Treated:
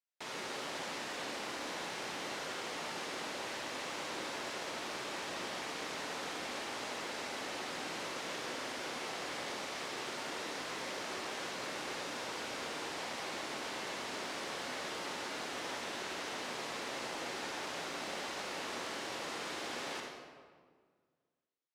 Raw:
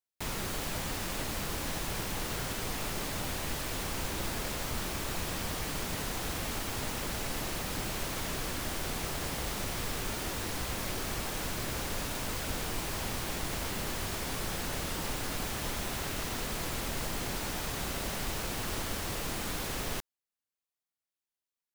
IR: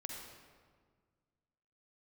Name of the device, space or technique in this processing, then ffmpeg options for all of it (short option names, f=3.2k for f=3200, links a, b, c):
supermarket ceiling speaker: -filter_complex "[0:a]highpass=350,lowpass=6k[a];[1:a]atrim=start_sample=2205[b];[a][b]afir=irnorm=-1:irlink=0"